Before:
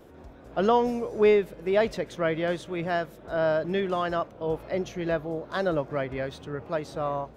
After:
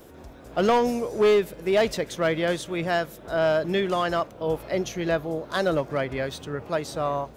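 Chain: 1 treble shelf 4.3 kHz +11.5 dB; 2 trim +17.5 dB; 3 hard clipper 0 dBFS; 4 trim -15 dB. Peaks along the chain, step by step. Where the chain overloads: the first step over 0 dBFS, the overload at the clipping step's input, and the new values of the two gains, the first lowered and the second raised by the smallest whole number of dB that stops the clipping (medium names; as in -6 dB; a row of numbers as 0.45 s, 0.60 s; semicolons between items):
-10.0 dBFS, +7.5 dBFS, 0.0 dBFS, -15.0 dBFS; step 2, 7.5 dB; step 2 +9.5 dB, step 4 -7 dB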